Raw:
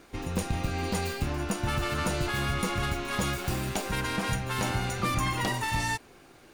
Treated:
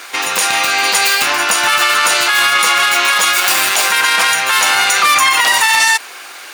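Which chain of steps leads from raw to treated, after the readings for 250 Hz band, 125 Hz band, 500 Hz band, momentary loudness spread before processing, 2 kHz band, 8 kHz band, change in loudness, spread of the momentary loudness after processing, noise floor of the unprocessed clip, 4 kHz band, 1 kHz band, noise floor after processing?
-1.5 dB, under -10 dB, +9.0 dB, 3 LU, +22.5 dB, +23.0 dB, +19.5 dB, 3 LU, -54 dBFS, +23.5 dB, +18.5 dB, -33 dBFS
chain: HPF 1200 Hz 12 dB/oct; maximiser +28.5 dB; gain -1 dB

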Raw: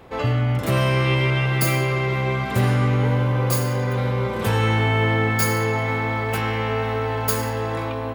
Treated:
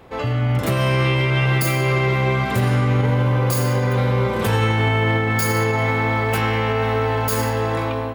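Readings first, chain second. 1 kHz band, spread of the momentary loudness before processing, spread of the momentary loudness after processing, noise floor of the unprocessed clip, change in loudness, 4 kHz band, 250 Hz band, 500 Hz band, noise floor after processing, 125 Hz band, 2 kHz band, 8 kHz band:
+2.5 dB, 4 LU, 2 LU, -27 dBFS, +2.0 dB, +2.0 dB, +2.0 dB, +2.5 dB, -24 dBFS, +2.0 dB, +2.0 dB, +0.5 dB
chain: limiter -14 dBFS, peak gain reduction 7 dB; AGC gain up to 4 dB

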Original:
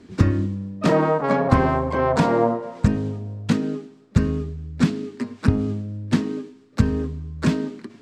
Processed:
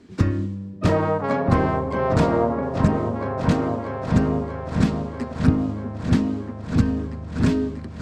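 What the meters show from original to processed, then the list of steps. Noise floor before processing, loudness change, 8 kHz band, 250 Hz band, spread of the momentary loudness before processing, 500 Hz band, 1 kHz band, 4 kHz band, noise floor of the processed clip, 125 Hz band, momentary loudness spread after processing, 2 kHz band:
-50 dBFS, 0.0 dB, -2.0 dB, +0.5 dB, 12 LU, -0.5 dB, -1.0 dB, -2.0 dB, -35 dBFS, +0.5 dB, 8 LU, -1.5 dB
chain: repeats that get brighter 0.639 s, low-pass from 400 Hz, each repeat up 2 oct, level -3 dB; gain -2.5 dB

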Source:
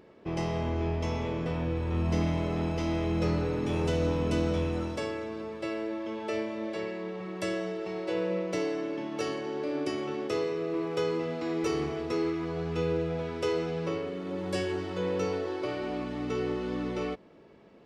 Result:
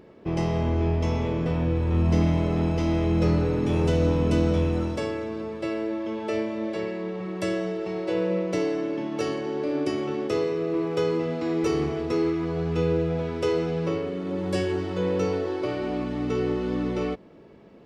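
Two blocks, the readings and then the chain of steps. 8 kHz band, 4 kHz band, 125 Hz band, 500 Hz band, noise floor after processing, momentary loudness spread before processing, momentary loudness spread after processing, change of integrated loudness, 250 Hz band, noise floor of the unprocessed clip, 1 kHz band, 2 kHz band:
+2.0 dB, +2.0 dB, +7.0 dB, +5.0 dB, -49 dBFS, 6 LU, 7 LU, +5.5 dB, +6.0 dB, -54 dBFS, +3.0 dB, +2.5 dB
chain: low shelf 460 Hz +5.5 dB; gain +2 dB

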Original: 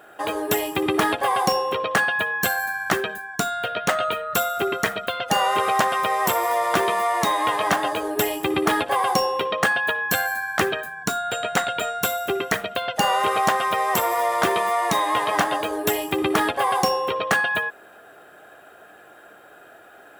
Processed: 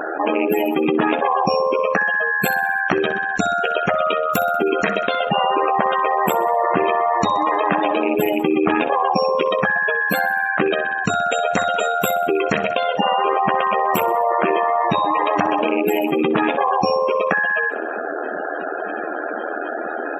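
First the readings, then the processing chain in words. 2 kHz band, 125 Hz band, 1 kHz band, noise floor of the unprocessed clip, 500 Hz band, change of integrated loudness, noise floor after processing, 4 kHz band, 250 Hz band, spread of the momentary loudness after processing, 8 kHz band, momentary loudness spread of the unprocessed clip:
+3.0 dB, +3.5 dB, +3.5 dB, -48 dBFS, +6.0 dB, +3.0 dB, -26 dBFS, -2.0 dB, +6.5 dB, 8 LU, -7.0 dB, 5 LU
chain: rattling part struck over -36 dBFS, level -15 dBFS; bell 110 Hz -14.5 dB 0.62 oct; AM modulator 80 Hz, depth 60%; spectral gate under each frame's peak -15 dB strong; low shelf 450 Hz +12 dB; notches 50/100 Hz; feedback echo 63 ms, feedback 59%, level -20 dB; fast leveller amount 70%

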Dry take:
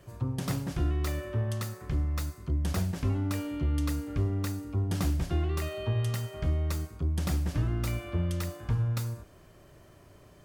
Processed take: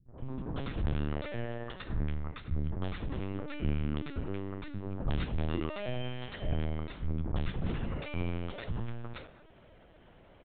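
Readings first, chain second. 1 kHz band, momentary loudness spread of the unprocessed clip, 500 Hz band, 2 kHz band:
-2.5 dB, 4 LU, -1.5 dB, -1.5 dB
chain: bell 110 Hz -7 dB 0.88 oct; notches 50/100/150/200/250/300/350/400/450 Hz; added harmonics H 5 -35 dB, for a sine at -19.5 dBFS; three bands offset in time lows, mids, highs 80/190 ms, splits 220/1200 Hz; LPC vocoder at 8 kHz pitch kept

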